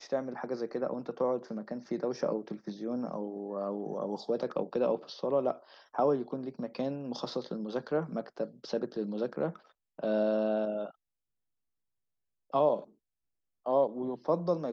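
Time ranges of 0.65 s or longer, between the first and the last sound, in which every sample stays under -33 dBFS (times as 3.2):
10.87–12.54
12.79–13.66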